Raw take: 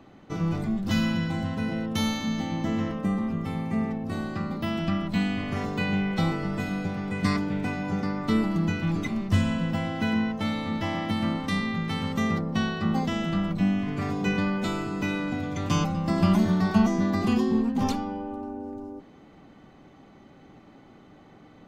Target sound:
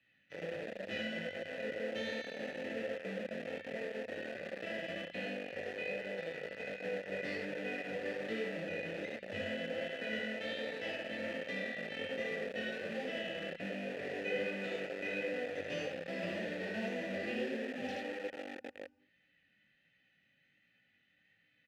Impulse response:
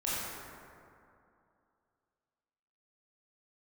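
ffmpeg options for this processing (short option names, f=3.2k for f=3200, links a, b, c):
-filter_complex "[0:a]equalizer=f=4.4k:t=o:w=1.9:g=3,aecho=1:1:57|77:0.282|0.668,flanger=delay=16:depth=7.7:speed=1.3,asplit=2[a][b];[b]asoftclip=type=tanh:threshold=-25.5dB,volume=-9dB[c];[a][c]amix=inputs=2:normalize=0,asettb=1/sr,asplit=3[d][e][f];[d]atrim=end=5.344[g];[e]atrim=start=5.34:end=6.84,asetpts=PTS-STARTPTS,afade=t=in:d=0.004:c=qsin,afade=t=out:st=1.496:d=0.004:c=qsin,acompressor=threshold=-25dB:ratio=10[h];[f]atrim=start=6.836[i];[g][h]acrossfade=d=0.004:c1=hsin:c2=qsin[j];[j][i]acrossfade=d=0.004:c1=qsin:c2=hsin,asettb=1/sr,asplit=3[k][l][m];[k]atrim=end=10.134[n];[l]atrim=start=10.13:end=10.96,asetpts=PTS-STARTPTS,afade=t=in:d=0.004:c=qsin,afade=t=out:st=0.826:d=0.004:c=qsin,highshelf=f=3.4k:g=9.5[o];[m]atrim=start=10.956[p];[n][o]acrossfade=d=0.004:c1=hsin:c2=qsin[q];[q][p]acrossfade=d=0.004:c1=qsin:c2=hsin,acrossover=split=180|1300[r][s][t];[s]acrusher=bits=4:mix=0:aa=0.000001[u];[r][u][t]amix=inputs=3:normalize=0,asplit=3[v][w][x];[v]bandpass=f=530:t=q:w=8,volume=0dB[y];[w]bandpass=f=1.84k:t=q:w=8,volume=-6dB[z];[x]bandpass=f=2.48k:t=q:w=8,volume=-9dB[aa];[y][z][aa]amix=inputs=3:normalize=0,volume=1.5dB"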